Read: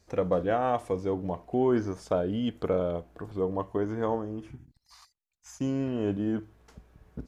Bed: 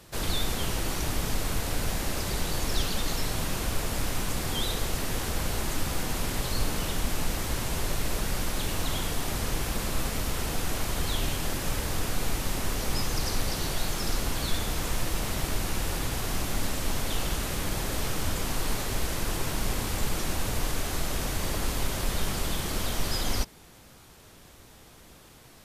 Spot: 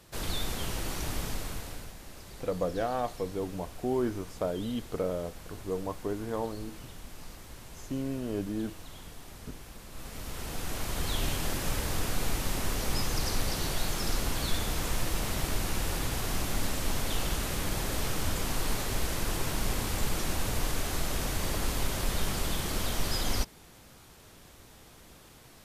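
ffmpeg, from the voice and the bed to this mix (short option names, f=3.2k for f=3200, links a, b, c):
-filter_complex "[0:a]adelay=2300,volume=-4.5dB[a];[1:a]volume=11dB,afade=t=out:st=1.19:d=0.74:silence=0.237137,afade=t=in:st=9.89:d=1.39:silence=0.16788[b];[a][b]amix=inputs=2:normalize=0"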